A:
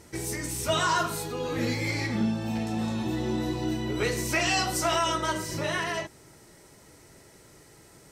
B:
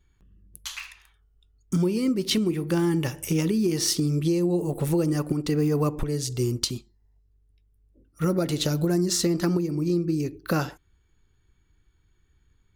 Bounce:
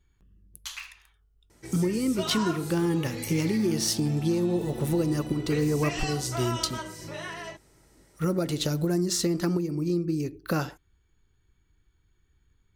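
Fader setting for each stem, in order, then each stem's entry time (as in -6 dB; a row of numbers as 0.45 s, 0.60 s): -8.0 dB, -2.5 dB; 1.50 s, 0.00 s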